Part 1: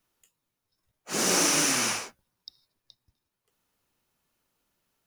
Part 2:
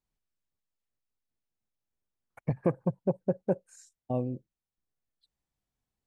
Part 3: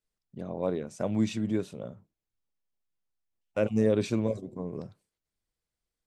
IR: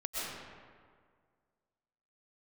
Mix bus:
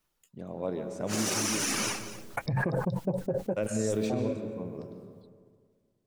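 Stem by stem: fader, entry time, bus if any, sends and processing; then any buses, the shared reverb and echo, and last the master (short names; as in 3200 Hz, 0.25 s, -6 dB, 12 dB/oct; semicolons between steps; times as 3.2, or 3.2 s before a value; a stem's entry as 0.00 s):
-1.5 dB, 0.00 s, no send, echo send -14 dB, reverb removal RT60 0.77 s
+2.0 dB, 0.00 s, no send, no echo send, flange 0.36 Hz, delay 4.5 ms, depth 8.6 ms, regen -30%; backwards sustainer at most 27 dB/s
-5.5 dB, 0.00 s, send -7.5 dB, no echo send, dry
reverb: on, RT60 1.9 s, pre-delay 85 ms
echo: echo 0.238 s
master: limiter -19.5 dBFS, peak gain reduction 6.5 dB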